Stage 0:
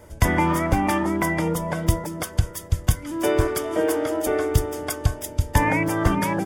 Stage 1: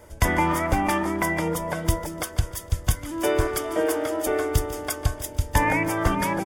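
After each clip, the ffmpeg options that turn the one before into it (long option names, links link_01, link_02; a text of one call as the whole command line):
ffmpeg -i in.wav -af "equalizer=frequency=150:width_type=o:width=2.2:gain=-5,aecho=1:1:147|294|441:0.15|0.0479|0.0153" out.wav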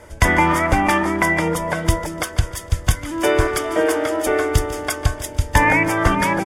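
ffmpeg -i in.wav -af "lowpass=11000,equalizer=frequency=1900:width=1:gain=4,volume=5dB" out.wav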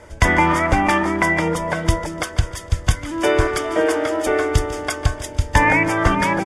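ffmpeg -i in.wav -af "lowpass=8600" out.wav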